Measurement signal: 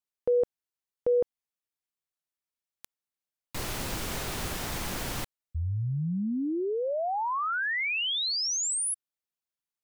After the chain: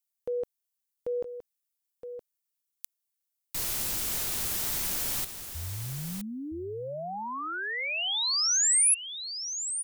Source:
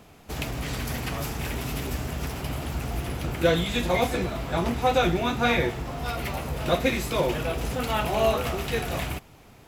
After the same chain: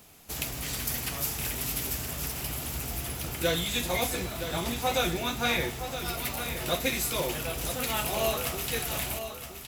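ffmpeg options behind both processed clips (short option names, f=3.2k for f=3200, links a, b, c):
-af "crystalizer=i=4:c=0,aecho=1:1:968:0.335,volume=-7.5dB"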